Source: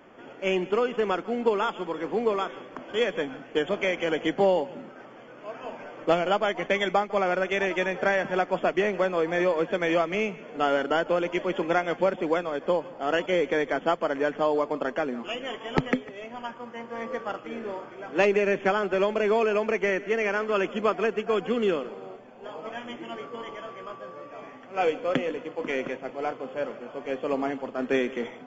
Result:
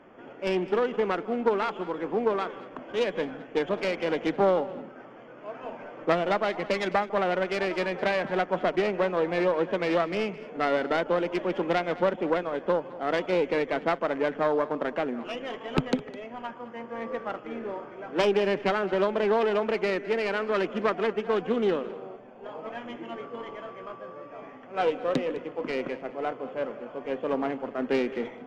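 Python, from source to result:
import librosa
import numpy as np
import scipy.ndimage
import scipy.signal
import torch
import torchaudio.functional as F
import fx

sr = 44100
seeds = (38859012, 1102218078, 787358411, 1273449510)

y = fx.self_delay(x, sr, depth_ms=0.24)
y = fx.lowpass(y, sr, hz=2100.0, slope=6)
y = y + 10.0 ** (-18.5 / 20.0) * np.pad(y, (int(209 * sr / 1000.0), 0))[:len(y)]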